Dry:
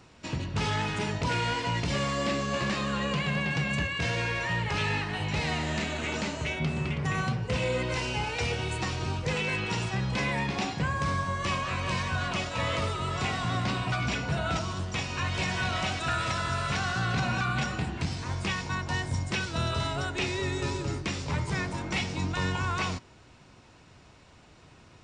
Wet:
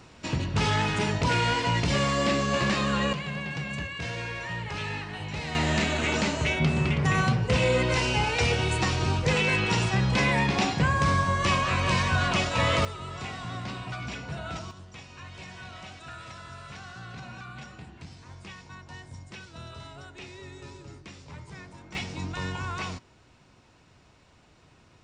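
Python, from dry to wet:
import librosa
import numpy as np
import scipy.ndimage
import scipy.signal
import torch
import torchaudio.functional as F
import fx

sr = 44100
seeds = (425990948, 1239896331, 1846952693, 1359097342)

y = fx.gain(x, sr, db=fx.steps((0.0, 4.0), (3.13, -4.5), (5.55, 5.5), (12.85, -6.5), (14.71, -13.5), (21.95, -3.5)))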